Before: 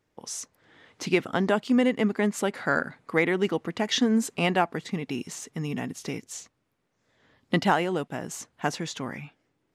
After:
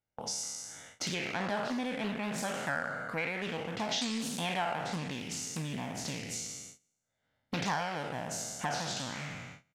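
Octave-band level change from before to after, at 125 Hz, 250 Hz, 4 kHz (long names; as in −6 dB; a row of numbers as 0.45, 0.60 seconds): −7.0, −11.0, −3.0 decibels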